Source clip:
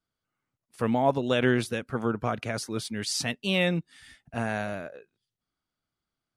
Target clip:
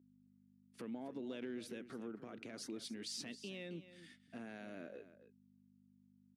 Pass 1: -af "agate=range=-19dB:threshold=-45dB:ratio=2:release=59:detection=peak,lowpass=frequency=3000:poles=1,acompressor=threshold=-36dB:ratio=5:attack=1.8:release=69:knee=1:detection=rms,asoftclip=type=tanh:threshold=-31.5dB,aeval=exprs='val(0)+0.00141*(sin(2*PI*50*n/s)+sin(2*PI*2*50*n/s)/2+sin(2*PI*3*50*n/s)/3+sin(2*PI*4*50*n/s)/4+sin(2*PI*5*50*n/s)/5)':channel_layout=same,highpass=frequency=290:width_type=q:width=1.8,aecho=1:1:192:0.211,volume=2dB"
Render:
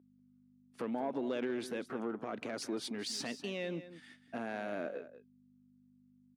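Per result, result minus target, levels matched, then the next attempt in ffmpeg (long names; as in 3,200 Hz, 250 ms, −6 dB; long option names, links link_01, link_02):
1,000 Hz band +6.0 dB; echo 78 ms early; downward compressor: peak gain reduction −5 dB
-af "agate=range=-19dB:threshold=-45dB:ratio=2:release=59:detection=peak,lowpass=frequency=3000:poles=1,acompressor=threshold=-36dB:ratio=5:attack=1.8:release=69:knee=1:detection=rms,asoftclip=type=tanh:threshold=-31.5dB,aeval=exprs='val(0)+0.00141*(sin(2*PI*50*n/s)+sin(2*PI*2*50*n/s)/2+sin(2*PI*3*50*n/s)/3+sin(2*PI*4*50*n/s)/4+sin(2*PI*5*50*n/s)/5)':channel_layout=same,highpass=frequency=290:width_type=q:width=1.8,equalizer=frequency=870:width=0.63:gain=-11,aecho=1:1:192:0.211,volume=2dB"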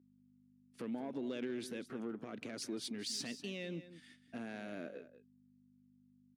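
echo 78 ms early; downward compressor: peak gain reduction −5 dB
-af "agate=range=-19dB:threshold=-45dB:ratio=2:release=59:detection=peak,lowpass=frequency=3000:poles=1,acompressor=threshold=-36dB:ratio=5:attack=1.8:release=69:knee=1:detection=rms,asoftclip=type=tanh:threshold=-31.5dB,aeval=exprs='val(0)+0.00141*(sin(2*PI*50*n/s)+sin(2*PI*2*50*n/s)/2+sin(2*PI*3*50*n/s)/3+sin(2*PI*4*50*n/s)/4+sin(2*PI*5*50*n/s)/5)':channel_layout=same,highpass=frequency=290:width_type=q:width=1.8,equalizer=frequency=870:width=0.63:gain=-11,aecho=1:1:270:0.211,volume=2dB"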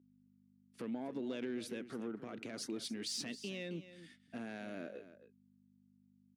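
downward compressor: peak gain reduction −5 dB
-af "agate=range=-19dB:threshold=-45dB:ratio=2:release=59:detection=peak,lowpass=frequency=3000:poles=1,acompressor=threshold=-42.5dB:ratio=5:attack=1.8:release=69:knee=1:detection=rms,asoftclip=type=tanh:threshold=-31.5dB,aeval=exprs='val(0)+0.00141*(sin(2*PI*50*n/s)+sin(2*PI*2*50*n/s)/2+sin(2*PI*3*50*n/s)/3+sin(2*PI*4*50*n/s)/4+sin(2*PI*5*50*n/s)/5)':channel_layout=same,highpass=frequency=290:width_type=q:width=1.8,equalizer=frequency=870:width=0.63:gain=-11,aecho=1:1:270:0.211,volume=2dB"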